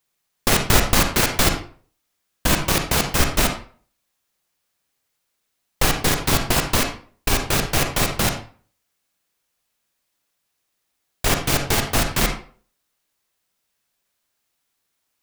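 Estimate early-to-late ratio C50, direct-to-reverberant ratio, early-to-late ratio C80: 6.5 dB, 4.5 dB, 11.0 dB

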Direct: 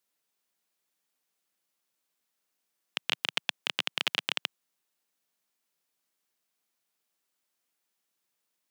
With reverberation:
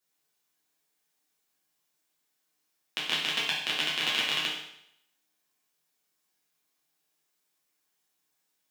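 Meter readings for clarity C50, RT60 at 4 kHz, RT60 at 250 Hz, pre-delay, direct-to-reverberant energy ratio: 2.0 dB, 0.75 s, 0.65 s, 7 ms, -6.5 dB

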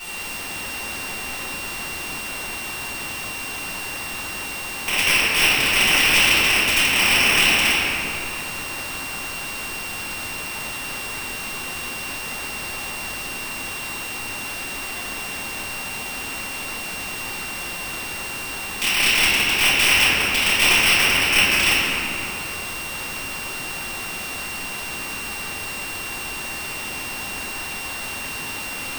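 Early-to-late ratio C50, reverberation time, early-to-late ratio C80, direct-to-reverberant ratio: -3.0 dB, 2.7 s, -1.5 dB, -16.5 dB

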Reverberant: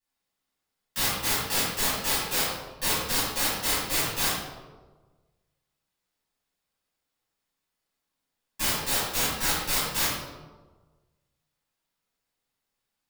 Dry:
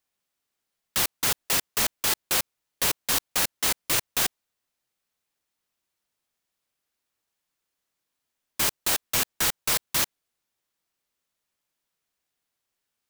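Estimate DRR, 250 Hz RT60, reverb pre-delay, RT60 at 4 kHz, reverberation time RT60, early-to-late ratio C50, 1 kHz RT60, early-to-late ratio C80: -12.5 dB, 1.4 s, 6 ms, 0.75 s, 1.3 s, -1.5 dB, 1.2 s, 2.0 dB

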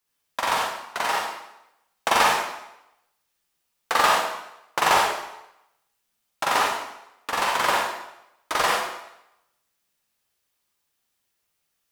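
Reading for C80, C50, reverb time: 3.0 dB, -1.0 dB, 0.85 s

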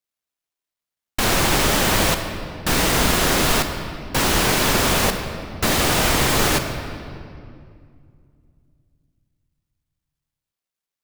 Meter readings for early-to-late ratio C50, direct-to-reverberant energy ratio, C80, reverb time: 7.0 dB, 6.0 dB, 8.0 dB, 2.3 s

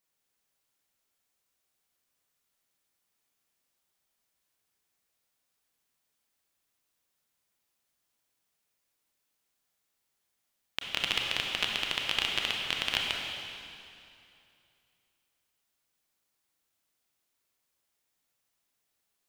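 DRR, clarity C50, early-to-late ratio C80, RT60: -0.5 dB, 0.5 dB, 2.0 dB, 2.6 s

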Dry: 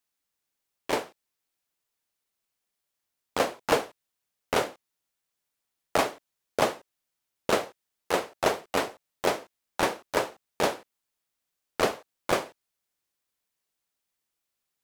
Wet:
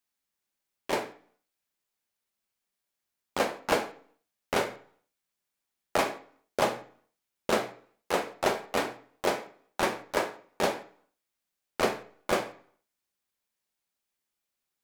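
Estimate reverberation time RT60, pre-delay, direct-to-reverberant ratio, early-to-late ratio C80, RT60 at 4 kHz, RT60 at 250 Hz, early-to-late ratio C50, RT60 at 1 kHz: 0.50 s, 3 ms, 5.0 dB, 16.0 dB, 0.45 s, 0.60 s, 12.5 dB, 0.55 s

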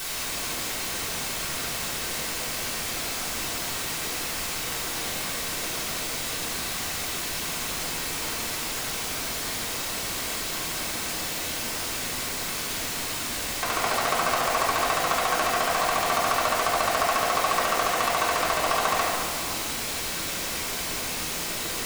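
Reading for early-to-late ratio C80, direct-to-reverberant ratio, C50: 1.0 dB, -8.0 dB, -1.0 dB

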